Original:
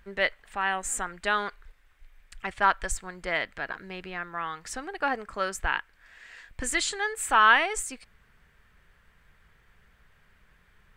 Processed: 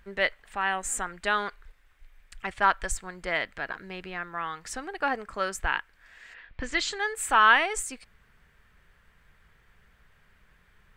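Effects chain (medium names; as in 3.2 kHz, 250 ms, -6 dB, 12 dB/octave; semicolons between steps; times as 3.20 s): 6.33–6.98 s: low-pass 3 kHz -> 7.8 kHz 24 dB/octave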